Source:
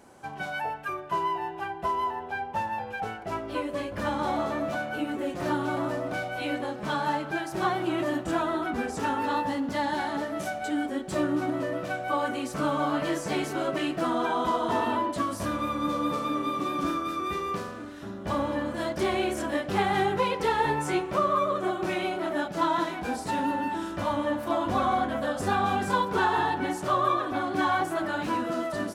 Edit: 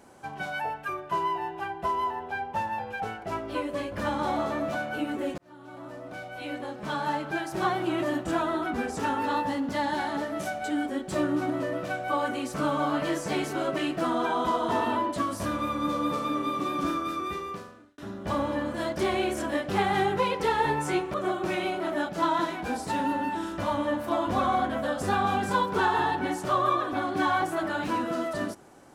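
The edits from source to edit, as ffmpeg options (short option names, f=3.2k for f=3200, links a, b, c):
-filter_complex "[0:a]asplit=4[a][b][c][d];[a]atrim=end=5.38,asetpts=PTS-STARTPTS,afade=t=out:st=5.376:d=0.004:c=hsin[e];[b]atrim=start=5.38:end=17.98,asetpts=PTS-STARTPTS,afade=t=in:d=2,afade=t=out:st=11.74:d=0.86[f];[c]atrim=start=17.98:end=21.142,asetpts=PTS-STARTPTS,afade=t=in:d=0.004:c=hsin[g];[d]atrim=start=21.528[h];[e][f][g]concat=n=3:v=0:a=1[i];[i][h]acrossfade=d=0.004:c1=hsin:c2=hsin"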